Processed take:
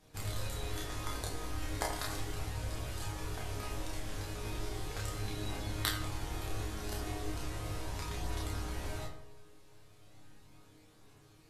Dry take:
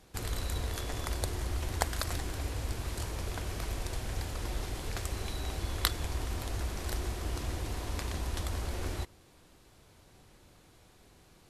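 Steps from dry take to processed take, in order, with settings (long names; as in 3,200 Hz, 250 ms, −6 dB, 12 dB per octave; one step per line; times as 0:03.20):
resonators tuned to a chord G#2 sus4, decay 0.31 s
feedback echo with a low-pass in the loop 84 ms, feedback 63%, low-pass 1,900 Hz, level −7 dB
multi-voice chorus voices 2, 0.18 Hz, delay 30 ms, depth 2 ms
level +13.5 dB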